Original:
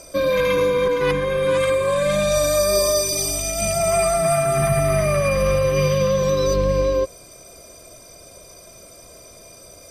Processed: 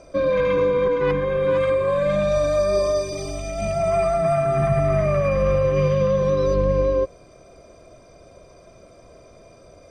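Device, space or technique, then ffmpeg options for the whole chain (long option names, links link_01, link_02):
through cloth: -af "lowpass=6800,highshelf=frequency=3100:gain=-17"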